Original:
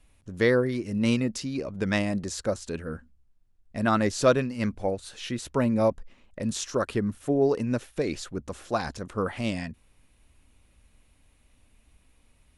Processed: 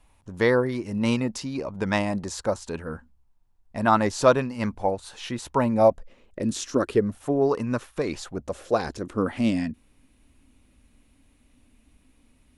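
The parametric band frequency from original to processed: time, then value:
parametric band +11.5 dB 0.66 octaves
0:05.68 910 Hz
0:06.72 240 Hz
0:07.33 1,100 Hz
0:08.02 1,100 Hz
0:09.22 260 Hz

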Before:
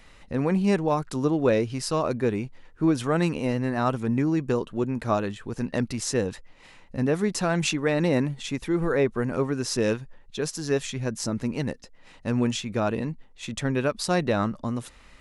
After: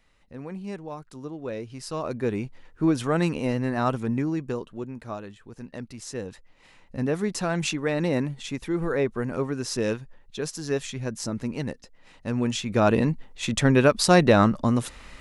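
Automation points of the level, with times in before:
0:01.42 −13 dB
0:02.42 0 dB
0:03.95 0 dB
0:05.16 −11 dB
0:05.87 −11 dB
0:06.96 −2 dB
0:12.41 −2 dB
0:12.93 +7 dB

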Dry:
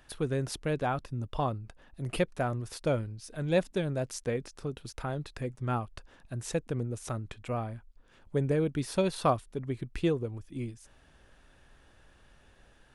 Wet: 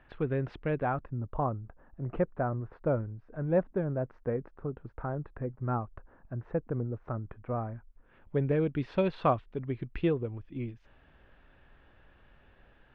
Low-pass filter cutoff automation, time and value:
low-pass filter 24 dB per octave
0:00.68 2,500 Hz
0:01.27 1,500 Hz
0:07.51 1,500 Hz
0:08.42 3,000 Hz

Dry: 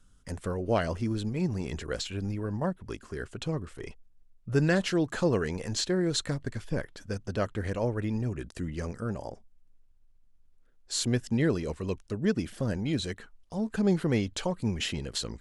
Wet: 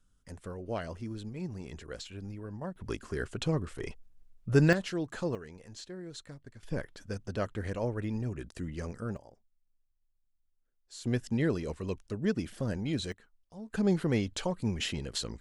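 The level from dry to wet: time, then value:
−9 dB
from 0:02.76 +2 dB
from 0:04.73 −7 dB
from 0:05.35 −16 dB
from 0:06.63 −3.5 dB
from 0:09.17 −16 dB
from 0:11.05 −3 dB
from 0:13.12 −13.5 dB
from 0:13.73 −2 dB

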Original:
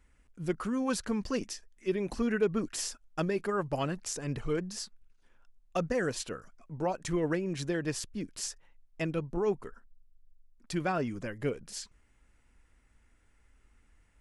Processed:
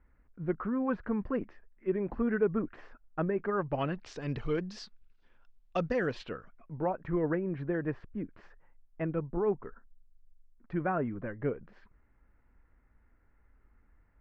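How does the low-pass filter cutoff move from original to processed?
low-pass filter 24 dB per octave
0:03.32 1,800 Hz
0:04.28 4,500 Hz
0:05.92 4,500 Hz
0:06.96 1,800 Hz

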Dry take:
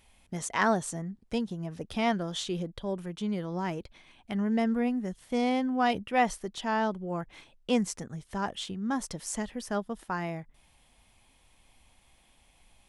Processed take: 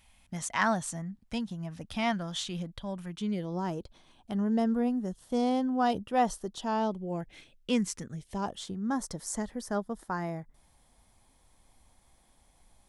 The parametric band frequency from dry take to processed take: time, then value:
parametric band −13 dB 0.68 octaves
0:03.06 410 Hz
0:03.60 2,200 Hz
0:06.59 2,200 Hz
0:07.93 600 Hz
0:08.62 2,700 Hz

